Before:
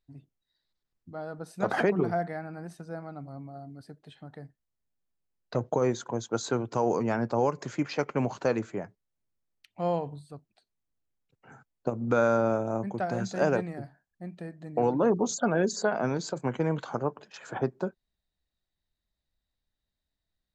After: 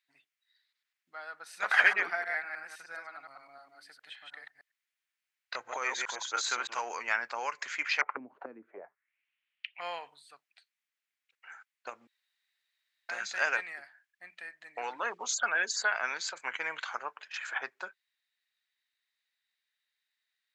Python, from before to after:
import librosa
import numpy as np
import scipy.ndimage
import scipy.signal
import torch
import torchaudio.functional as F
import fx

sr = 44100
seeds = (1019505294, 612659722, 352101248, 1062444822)

y = fx.reverse_delay(x, sr, ms=103, wet_db=-3, at=(1.42, 6.81))
y = fx.envelope_lowpass(y, sr, base_hz=270.0, top_hz=3000.0, q=4.0, full_db=-26.0, direction='down', at=(8.01, 9.81))
y = fx.edit(y, sr, fx.room_tone_fill(start_s=12.07, length_s=1.02), tone=tone)
y = scipy.signal.sosfilt(scipy.signal.butter(2, 1400.0, 'highpass', fs=sr, output='sos'), y)
y = fx.peak_eq(y, sr, hz=2100.0, db=13.0, octaves=1.5)